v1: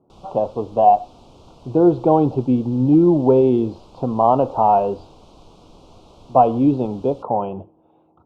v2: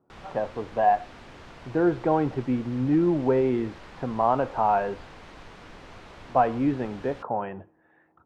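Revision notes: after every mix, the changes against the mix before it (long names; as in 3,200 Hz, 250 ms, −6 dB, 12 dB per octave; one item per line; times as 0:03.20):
speech −8.5 dB
master: remove Butterworth band-reject 1,800 Hz, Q 0.83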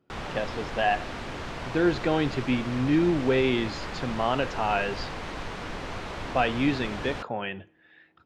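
speech: remove low-pass with resonance 960 Hz, resonance Q 2.1
background +10.5 dB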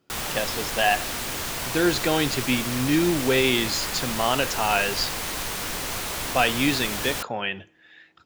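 master: remove head-to-tape spacing loss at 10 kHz 29 dB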